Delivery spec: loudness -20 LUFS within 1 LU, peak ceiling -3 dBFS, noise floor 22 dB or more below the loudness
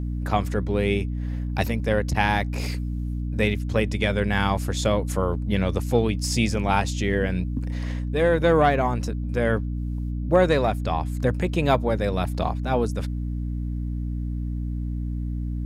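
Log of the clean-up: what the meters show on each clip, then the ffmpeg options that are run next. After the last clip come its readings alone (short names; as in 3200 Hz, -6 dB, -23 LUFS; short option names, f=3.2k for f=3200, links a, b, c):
hum 60 Hz; harmonics up to 300 Hz; hum level -25 dBFS; loudness -24.5 LUFS; peak -5.5 dBFS; loudness target -20.0 LUFS
-> -af "bandreject=f=60:t=h:w=4,bandreject=f=120:t=h:w=4,bandreject=f=180:t=h:w=4,bandreject=f=240:t=h:w=4,bandreject=f=300:t=h:w=4"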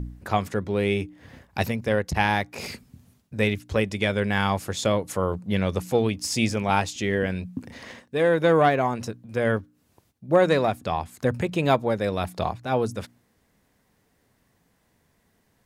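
hum none; loudness -24.5 LUFS; peak -6.0 dBFS; loudness target -20.0 LUFS
-> -af "volume=4.5dB,alimiter=limit=-3dB:level=0:latency=1"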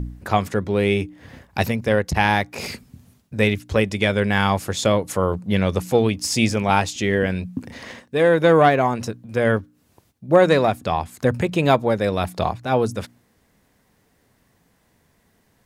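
loudness -20.0 LUFS; peak -3.0 dBFS; noise floor -63 dBFS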